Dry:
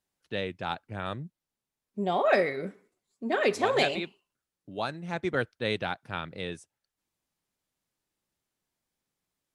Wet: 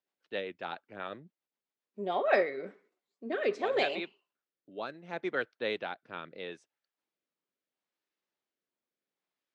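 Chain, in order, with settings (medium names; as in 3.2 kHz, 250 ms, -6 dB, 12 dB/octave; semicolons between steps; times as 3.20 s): high-pass 340 Hz 12 dB/octave; treble shelf 10 kHz -8.5 dB; rotary cabinet horn 7.5 Hz, later 0.75 Hz, at 1.82 s; distance through air 120 m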